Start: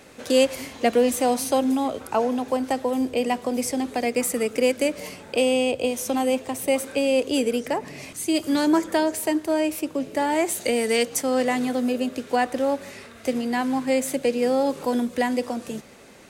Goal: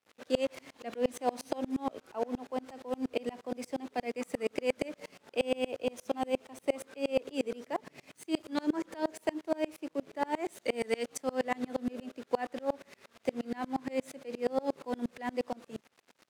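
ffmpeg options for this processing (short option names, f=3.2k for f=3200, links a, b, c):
-filter_complex "[0:a]asplit=2[a][b];[b]asoftclip=type=hard:threshold=-22.5dB,volume=-11dB[c];[a][c]amix=inputs=2:normalize=0,acrusher=bits=6:mix=0:aa=0.000001,aemphasis=mode=reproduction:type=50fm,aeval=exprs='sgn(val(0))*max(abs(val(0))-0.00668,0)':c=same,highpass=f=220:p=1,aeval=exprs='val(0)*pow(10,-30*if(lt(mod(-8.5*n/s,1),2*abs(-8.5)/1000),1-mod(-8.5*n/s,1)/(2*abs(-8.5)/1000),(mod(-8.5*n/s,1)-2*abs(-8.5)/1000)/(1-2*abs(-8.5)/1000))/20)':c=same,volume=-3dB"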